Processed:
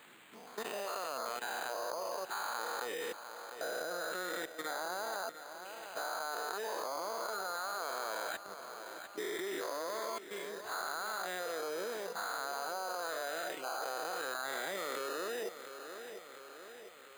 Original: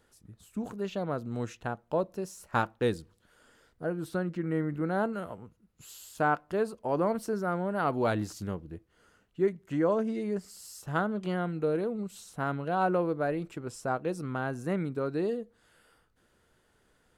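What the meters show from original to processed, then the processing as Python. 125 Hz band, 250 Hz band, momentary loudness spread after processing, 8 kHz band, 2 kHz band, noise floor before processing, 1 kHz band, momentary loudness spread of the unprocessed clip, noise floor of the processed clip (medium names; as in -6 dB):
under -30 dB, -18.5 dB, 9 LU, +5.0 dB, -1.0 dB, -69 dBFS, -4.5 dB, 12 LU, -53 dBFS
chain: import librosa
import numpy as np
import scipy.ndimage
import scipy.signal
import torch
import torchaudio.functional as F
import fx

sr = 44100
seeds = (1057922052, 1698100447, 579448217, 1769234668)

y = fx.spec_dilate(x, sr, span_ms=480)
y = scipy.signal.sosfilt(scipy.signal.butter(2, 750.0, 'highpass', fs=sr, output='sos'), y)
y = fx.dereverb_blind(y, sr, rt60_s=1.1)
y = fx.env_lowpass_down(y, sr, base_hz=3000.0, full_db=-25.0)
y = fx.high_shelf(y, sr, hz=4300.0, db=9.5)
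y = fx.level_steps(y, sr, step_db=20)
y = fx.dmg_noise_colour(y, sr, seeds[0], colour='blue', level_db=-52.0)
y = fx.echo_feedback(y, sr, ms=700, feedback_pct=46, wet_db=-13.0)
y = np.repeat(scipy.signal.resample_poly(y, 1, 8), 8)[:len(y)]
y = fx.band_squash(y, sr, depth_pct=40)
y = F.gain(torch.from_numpy(y), 1.0).numpy()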